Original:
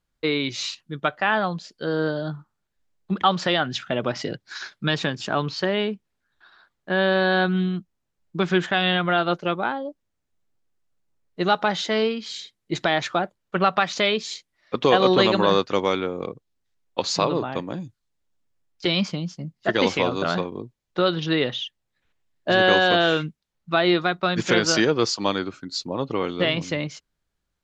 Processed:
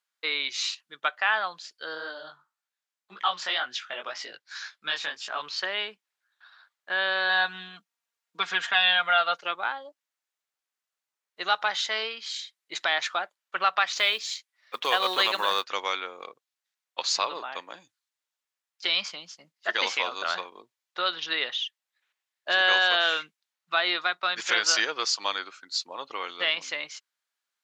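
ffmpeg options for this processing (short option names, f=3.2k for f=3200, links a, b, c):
-filter_complex "[0:a]asplit=3[a][b][c];[a]afade=t=out:st=1.94:d=0.02[d];[b]flanger=delay=16:depth=6:speed=1.9,afade=t=in:st=1.94:d=0.02,afade=t=out:st=5.41:d=0.02[e];[c]afade=t=in:st=5.41:d=0.02[f];[d][e][f]amix=inputs=3:normalize=0,asettb=1/sr,asplit=3[g][h][i];[g]atrim=end=7.294[j];[h]atrim=start=7.29:end=9.41,asetpts=PTS-STARTPTS,afade=t=in:d=0.004:c=qsin,afade=t=out:st=2.116:d=0.004:c=qsin,aecho=1:1:4.3:0.7,atrim=end_sample=93492[k];[i]atrim=start=9.406[l];[j][k]acrossfade=d=0.004:c1=hsin:c2=qsin[m];[m][l]acrossfade=d=0.004:c1=qsin:c2=hsin,asettb=1/sr,asplit=3[n][o][p];[n]atrim=end=13.944[q];[o]atrim=start=13.94:end=15.64,asetpts=PTS-STARTPTS,afade=t=in:d=0.004:c=qsin,afade=t=out:st=1.696:d=0.004:c=qsin,acrusher=bits=8:mode=log:mix=0:aa=0.000001[r];[p]atrim=start=15.636[s];[q][r]acrossfade=d=0.004:c1=hsin:c2=qsin[t];[t][s]acrossfade=d=0.004:c1=qsin:c2=hsin,highpass=1.1k"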